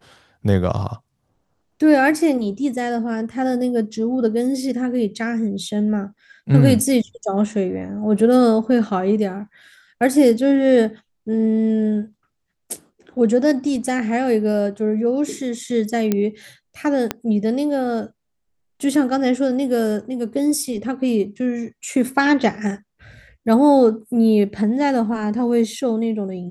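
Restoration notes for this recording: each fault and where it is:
0:16.12: click −6 dBFS
0:17.11: click −6 dBFS

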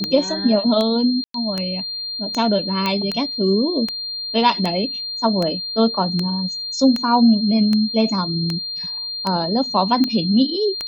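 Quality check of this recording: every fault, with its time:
scratch tick 78 rpm −9 dBFS
whistle 4,200 Hz −25 dBFS
0:01.24–0:01.34: drop-out 103 ms
0:02.86: click −7 dBFS

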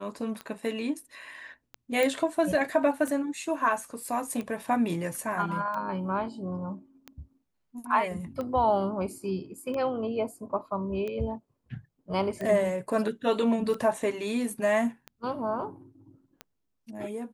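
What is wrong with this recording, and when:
scratch tick 45 rpm −23 dBFS
0:02.03: click

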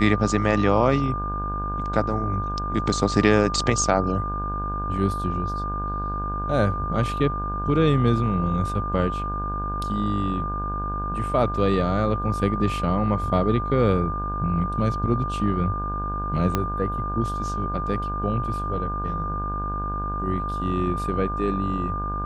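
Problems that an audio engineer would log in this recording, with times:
mains buzz 50 Hz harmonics 33 −30 dBFS
whistle 1,200 Hz −28 dBFS
0:16.55: click −8 dBFS

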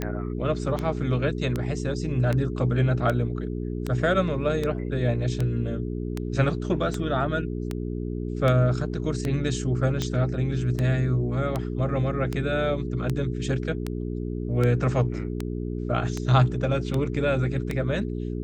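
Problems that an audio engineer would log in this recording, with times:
mains hum 60 Hz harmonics 7 −30 dBFS
scratch tick 78 rpm −14 dBFS

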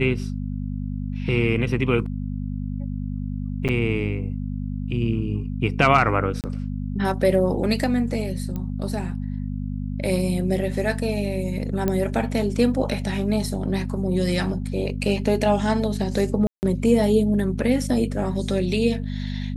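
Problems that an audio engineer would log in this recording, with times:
mains hum 50 Hz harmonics 5 −28 dBFS
0:03.68–0:03.69: drop-out 7.7 ms
0:06.41–0:06.44: drop-out 28 ms
0:08.56: click −18 dBFS
0:11.88: click −10 dBFS
0:16.47–0:16.63: drop-out 159 ms

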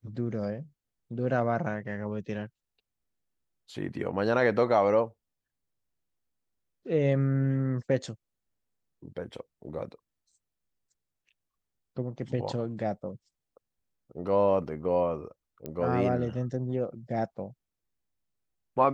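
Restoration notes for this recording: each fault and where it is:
0:15.66: click −23 dBFS

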